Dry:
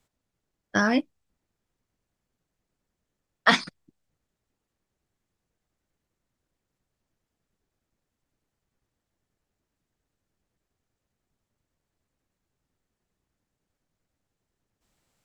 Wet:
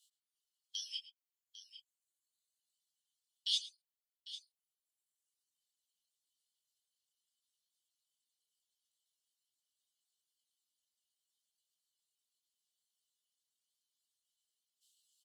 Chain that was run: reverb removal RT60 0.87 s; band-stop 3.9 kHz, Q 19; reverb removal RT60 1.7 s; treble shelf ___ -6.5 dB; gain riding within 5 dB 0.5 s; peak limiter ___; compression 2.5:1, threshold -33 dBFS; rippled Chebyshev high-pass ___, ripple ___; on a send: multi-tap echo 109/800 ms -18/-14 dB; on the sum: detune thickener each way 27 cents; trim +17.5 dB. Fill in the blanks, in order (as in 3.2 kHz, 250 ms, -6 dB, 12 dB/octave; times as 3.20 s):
4.7 kHz, -8.5 dBFS, 2.9 kHz, 6 dB